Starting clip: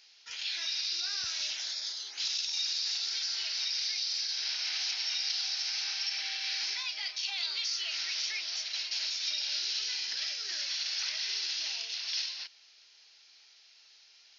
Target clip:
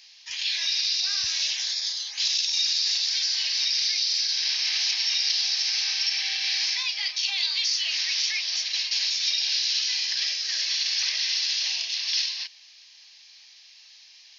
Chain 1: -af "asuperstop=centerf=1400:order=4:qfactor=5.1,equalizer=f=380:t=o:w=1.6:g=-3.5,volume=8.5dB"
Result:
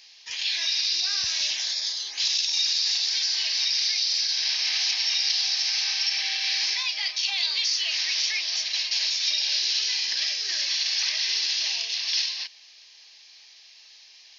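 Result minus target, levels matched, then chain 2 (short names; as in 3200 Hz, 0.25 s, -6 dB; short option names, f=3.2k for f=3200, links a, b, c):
500 Hz band +6.5 dB
-af "asuperstop=centerf=1400:order=4:qfactor=5.1,equalizer=f=380:t=o:w=1.6:g=-15,volume=8.5dB"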